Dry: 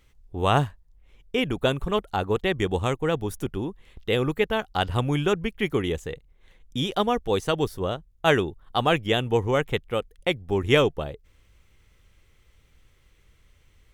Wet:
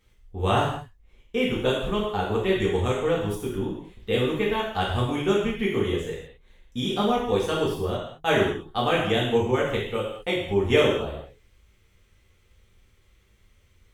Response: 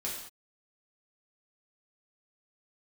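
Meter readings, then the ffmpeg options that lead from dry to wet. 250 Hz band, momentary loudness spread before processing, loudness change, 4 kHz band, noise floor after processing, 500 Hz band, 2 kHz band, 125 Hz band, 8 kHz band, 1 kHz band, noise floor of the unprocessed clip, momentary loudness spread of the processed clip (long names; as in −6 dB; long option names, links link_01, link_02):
+1.0 dB, 10 LU, +0.5 dB, −0.5 dB, −61 dBFS, +1.0 dB, −0.5 dB, −1.0 dB, −0.5 dB, −0.5 dB, −60 dBFS, 8 LU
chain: -filter_complex "[1:a]atrim=start_sample=2205[link_01];[0:a][link_01]afir=irnorm=-1:irlink=0,volume=-3dB"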